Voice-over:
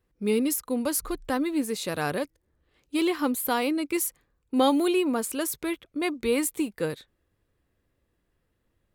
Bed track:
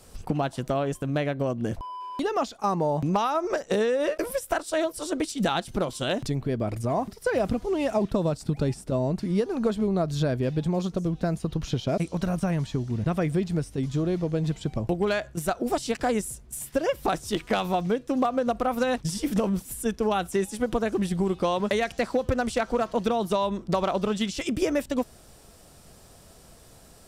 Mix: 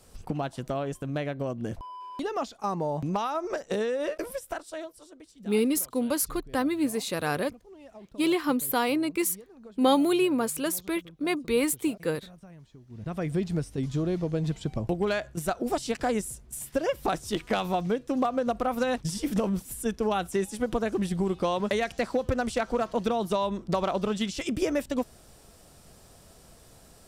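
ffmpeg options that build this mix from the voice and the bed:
-filter_complex "[0:a]adelay=5250,volume=1[s0];[1:a]volume=6.68,afade=t=out:st=4.14:d=0.99:silence=0.11885,afade=t=in:st=12.87:d=0.54:silence=0.0891251[s1];[s0][s1]amix=inputs=2:normalize=0"

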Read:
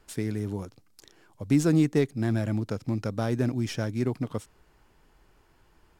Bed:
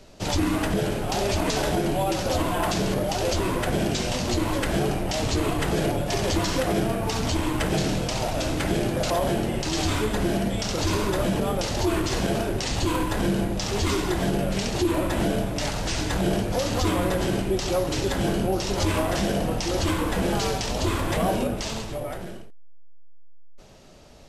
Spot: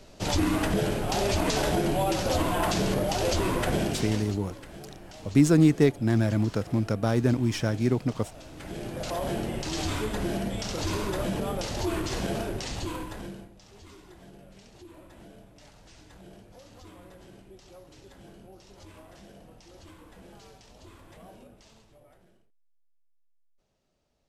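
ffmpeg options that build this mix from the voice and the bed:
-filter_complex "[0:a]adelay=3850,volume=1.41[s0];[1:a]volume=4.47,afade=t=out:st=3.72:d=0.67:silence=0.11885,afade=t=in:st=8.51:d=0.87:silence=0.188365,afade=t=out:st=12.45:d=1.06:silence=0.0944061[s1];[s0][s1]amix=inputs=2:normalize=0"

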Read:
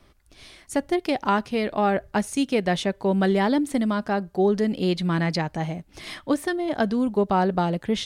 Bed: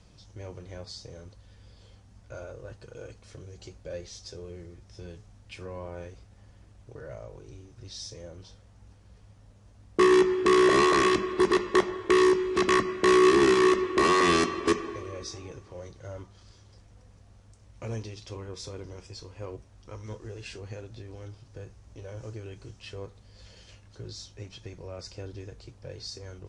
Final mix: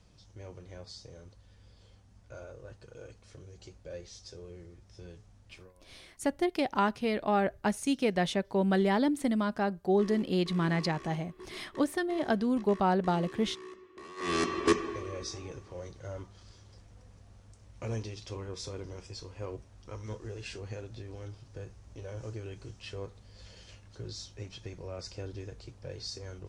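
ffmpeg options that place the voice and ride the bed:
-filter_complex "[0:a]adelay=5500,volume=0.531[s0];[1:a]volume=10.6,afade=t=out:st=5.48:d=0.25:silence=0.0891251,afade=t=in:st=14.16:d=0.43:silence=0.0530884[s1];[s0][s1]amix=inputs=2:normalize=0"

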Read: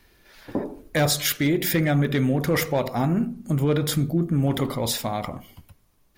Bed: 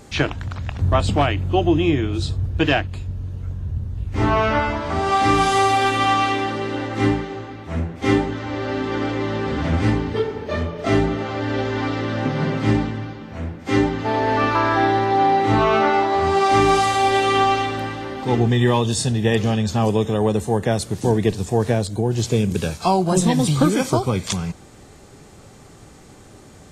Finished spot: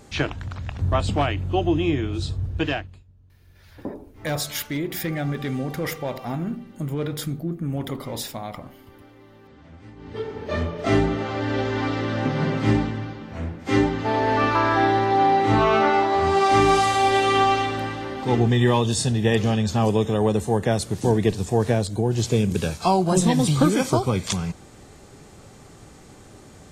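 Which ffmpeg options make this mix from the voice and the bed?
-filter_complex "[0:a]adelay=3300,volume=0.531[s0];[1:a]volume=10.6,afade=t=out:st=2.53:d=0.51:silence=0.0794328,afade=t=in:st=9.96:d=0.61:silence=0.0595662[s1];[s0][s1]amix=inputs=2:normalize=0"

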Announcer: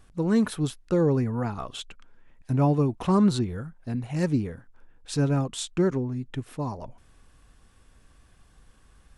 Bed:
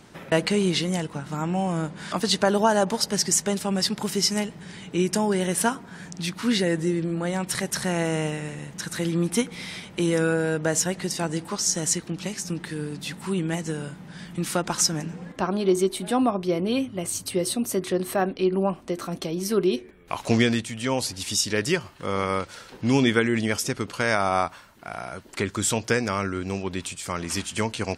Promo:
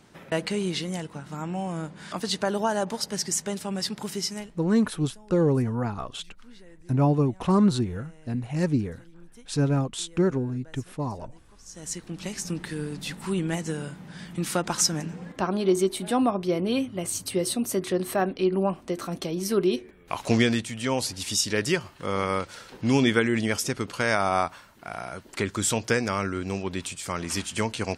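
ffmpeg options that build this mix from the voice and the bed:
-filter_complex "[0:a]adelay=4400,volume=1.06[s0];[1:a]volume=12.6,afade=t=out:st=4.13:d=0.58:silence=0.0707946,afade=t=in:st=11.65:d=0.79:silence=0.0421697[s1];[s0][s1]amix=inputs=2:normalize=0"

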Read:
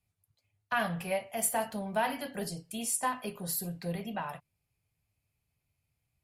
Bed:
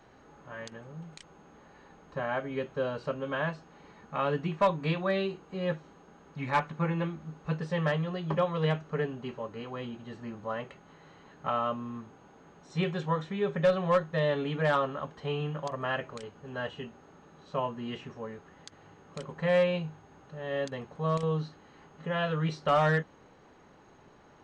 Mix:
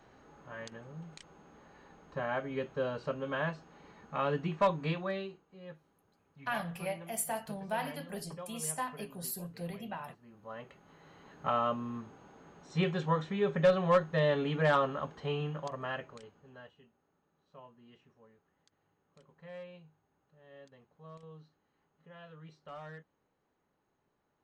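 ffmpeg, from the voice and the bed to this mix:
-filter_complex "[0:a]adelay=5750,volume=0.562[s0];[1:a]volume=5.31,afade=t=out:st=4.77:d=0.68:silence=0.177828,afade=t=in:st=10.28:d=1.14:silence=0.141254,afade=t=out:st=15.03:d=1.71:silence=0.0841395[s1];[s0][s1]amix=inputs=2:normalize=0"

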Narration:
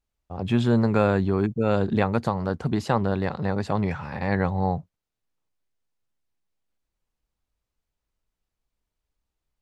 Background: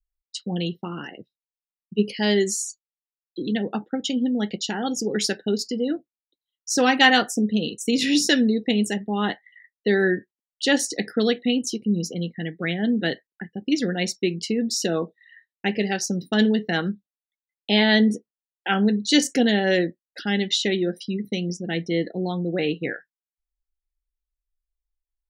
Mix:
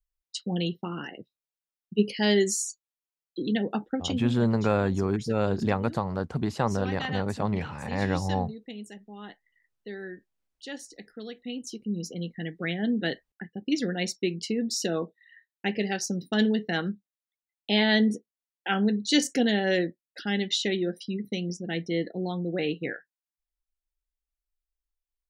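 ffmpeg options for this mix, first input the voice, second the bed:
-filter_complex "[0:a]adelay=3700,volume=0.668[s0];[1:a]volume=4.22,afade=t=out:st=3.9:d=0.57:silence=0.141254,afade=t=in:st=11.31:d=1.11:silence=0.188365[s1];[s0][s1]amix=inputs=2:normalize=0"

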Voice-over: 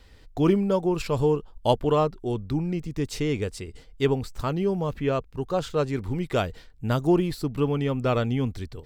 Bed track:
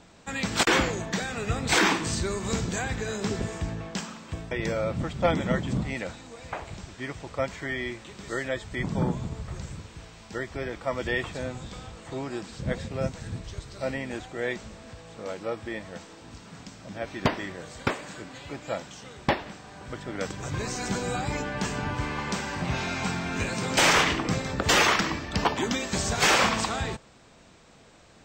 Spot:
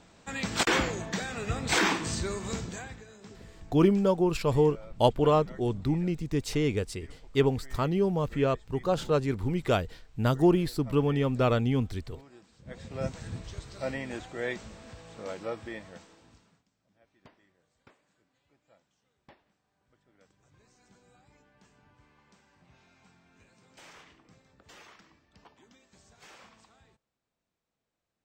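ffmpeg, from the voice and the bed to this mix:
-filter_complex "[0:a]adelay=3350,volume=0.891[s0];[1:a]volume=4.73,afade=t=out:st=2.31:d=0.76:silence=0.149624,afade=t=in:st=12.65:d=0.43:silence=0.141254,afade=t=out:st=15.43:d=1.2:silence=0.0334965[s1];[s0][s1]amix=inputs=2:normalize=0"

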